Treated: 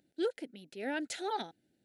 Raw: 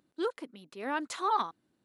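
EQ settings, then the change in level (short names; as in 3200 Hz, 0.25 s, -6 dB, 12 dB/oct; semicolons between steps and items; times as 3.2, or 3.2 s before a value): Butterworth band-stop 1100 Hz, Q 1.5; 0.0 dB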